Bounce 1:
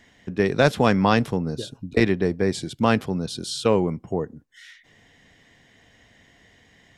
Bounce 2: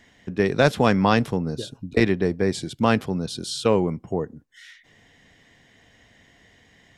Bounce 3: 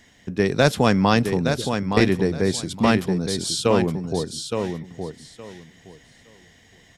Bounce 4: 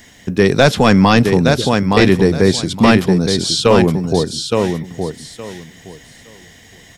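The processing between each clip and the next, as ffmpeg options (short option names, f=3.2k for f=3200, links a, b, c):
-af anull
-filter_complex "[0:a]bass=f=250:g=2,treble=f=4k:g=7,asplit=2[a][b];[b]aecho=0:1:867|1734|2601:0.473|0.0899|0.0171[c];[a][c]amix=inputs=2:normalize=0"
-filter_complex "[0:a]apsyclip=11.5dB,highshelf=f=9.8k:g=11,acrossover=split=6100[a][b];[b]acompressor=threshold=-35dB:ratio=4:attack=1:release=60[c];[a][c]amix=inputs=2:normalize=0,volume=-2dB"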